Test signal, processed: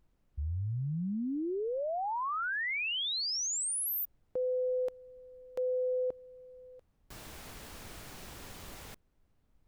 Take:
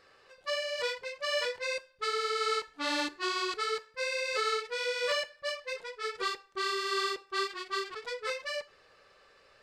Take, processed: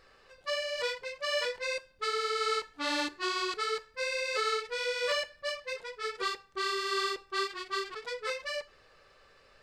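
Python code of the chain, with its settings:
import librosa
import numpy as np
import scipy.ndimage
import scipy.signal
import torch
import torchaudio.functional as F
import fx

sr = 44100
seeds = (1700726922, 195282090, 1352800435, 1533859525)

y = fx.dmg_noise_colour(x, sr, seeds[0], colour='brown', level_db=-69.0)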